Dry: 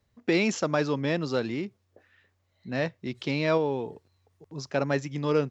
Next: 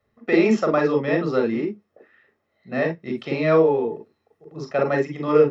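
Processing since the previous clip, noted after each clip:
convolution reverb, pre-delay 34 ms, DRR 2.5 dB
level −5 dB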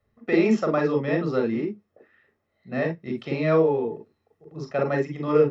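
low-shelf EQ 140 Hz +9 dB
level −4 dB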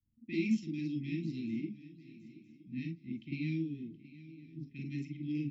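low-pass that shuts in the quiet parts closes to 690 Hz, open at −18.5 dBFS
Chebyshev band-stop filter 320–2,200 Hz, order 5
feedback echo with a long and a short gap by turns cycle 964 ms, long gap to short 3 to 1, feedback 35%, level −17.5 dB
level −8.5 dB

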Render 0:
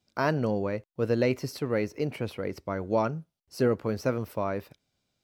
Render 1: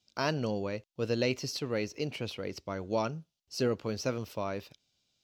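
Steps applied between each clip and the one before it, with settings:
flat-topped bell 4,300 Hz +10.5 dB
level −5 dB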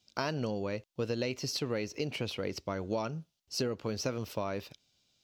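downward compressor, threshold −33 dBFS, peak gain reduction 9 dB
level +3.5 dB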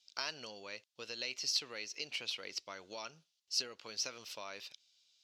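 resonant band-pass 4,500 Hz, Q 0.88
level +3 dB

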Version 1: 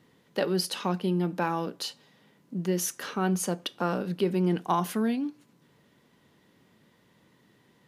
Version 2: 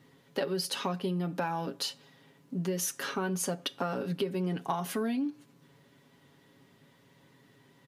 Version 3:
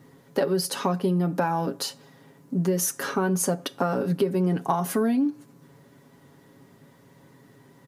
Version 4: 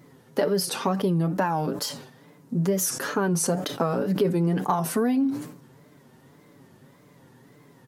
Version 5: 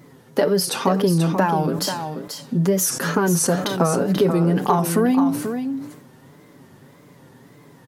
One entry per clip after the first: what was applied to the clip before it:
comb filter 7.3 ms, depth 64%; downward compressor 6 to 1, threshold −28 dBFS, peak gain reduction 10 dB
parametric band 3,100 Hz −9.5 dB 1.4 octaves; level +8.5 dB
tape wow and flutter 130 cents; level that may fall only so fast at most 87 dB per second
single-tap delay 486 ms −8 dB; level +5 dB

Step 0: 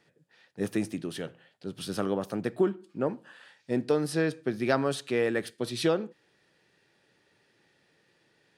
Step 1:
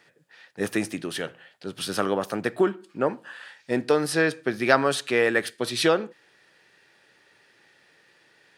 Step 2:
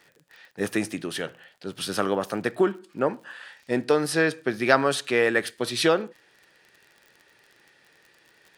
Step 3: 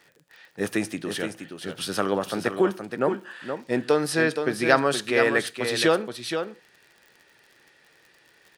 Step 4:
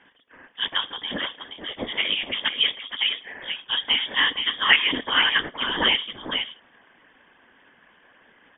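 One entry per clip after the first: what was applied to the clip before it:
drawn EQ curve 180 Hz 0 dB, 1,700 Hz +11 dB, 3,500 Hz +8 dB
surface crackle 37 per second −40 dBFS
single-tap delay 472 ms −7.5 dB
random phases in short frames; voice inversion scrambler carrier 3,500 Hz; graphic EQ with 10 bands 250 Hz +12 dB, 500 Hz +9 dB, 1,000 Hz +5 dB, 2,000 Hz +5 dB; level −3.5 dB

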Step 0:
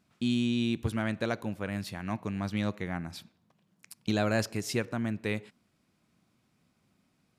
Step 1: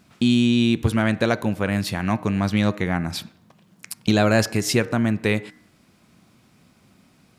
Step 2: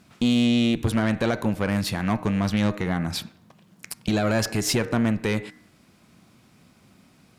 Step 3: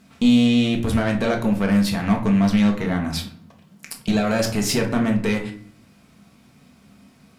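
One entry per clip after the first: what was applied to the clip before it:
hum removal 153.9 Hz, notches 14; in parallel at +2 dB: downward compressor, threshold −38 dBFS, peak gain reduction 13.5 dB; on the sum: level +8 dB
brickwall limiter −11 dBFS, peak gain reduction 6 dB; tube saturation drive 15 dB, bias 0.35; level +1.5 dB
convolution reverb RT60 0.45 s, pre-delay 4 ms, DRR 1.5 dB

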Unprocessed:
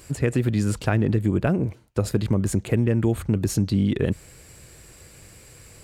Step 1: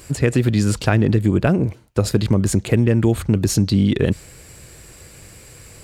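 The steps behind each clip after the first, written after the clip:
dynamic equaliser 4,600 Hz, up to +5 dB, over −49 dBFS, Q 1
level +5 dB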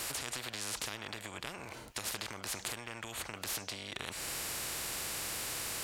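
harmonic and percussive parts rebalanced percussive −12 dB
downward compressor 4 to 1, threshold −28 dBFS, peak gain reduction 13 dB
every bin compressed towards the loudest bin 10 to 1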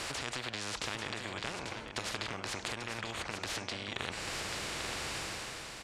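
fade-out on the ending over 0.67 s
high-frequency loss of the air 87 metres
single-tap delay 841 ms −7 dB
level +4 dB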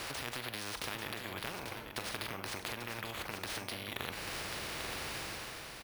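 double-tracking delay 42 ms −13.5 dB
bad sample-rate conversion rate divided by 3×, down filtered, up hold
level −2 dB

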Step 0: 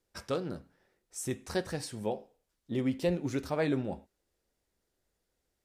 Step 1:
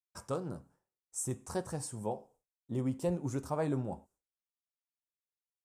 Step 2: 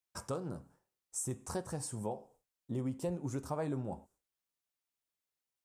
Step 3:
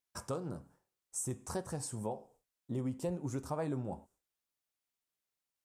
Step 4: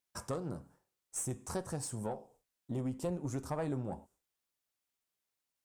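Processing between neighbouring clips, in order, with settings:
downward expander −58 dBFS; graphic EQ with 10 bands 125 Hz +7 dB, 1,000 Hz +9 dB, 2,000 Hz −8 dB, 4,000 Hz −9 dB, 8,000 Hz +11 dB; level −5.5 dB
downward compressor 2 to 1, threshold −43 dBFS, peak gain reduction 9 dB; level +4 dB
tape wow and flutter 28 cents
one-sided soft clipper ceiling −30.5 dBFS; level +1.5 dB

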